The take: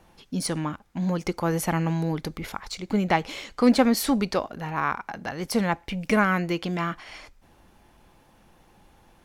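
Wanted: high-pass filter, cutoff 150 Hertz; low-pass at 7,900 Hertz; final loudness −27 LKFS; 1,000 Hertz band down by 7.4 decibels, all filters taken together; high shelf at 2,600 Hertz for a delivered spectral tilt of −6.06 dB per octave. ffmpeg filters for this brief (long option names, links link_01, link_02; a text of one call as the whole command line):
ffmpeg -i in.wav -af "highpass=150,lowpass=7900,equalizer=frequency=1000:width_type=o:gain=-8.5,highshelf=frequency=2600:gain=-8.5,volume=1.5dB" out.wav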